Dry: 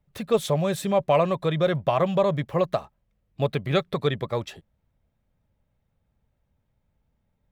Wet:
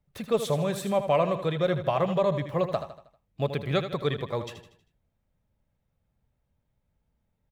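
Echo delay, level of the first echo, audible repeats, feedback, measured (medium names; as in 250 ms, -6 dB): 79 ms, -10.0 dB, 4, 45%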